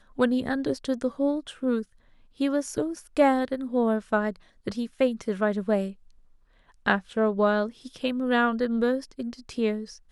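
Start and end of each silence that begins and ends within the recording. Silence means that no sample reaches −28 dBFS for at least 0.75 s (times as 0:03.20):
0:05.88–0:06.86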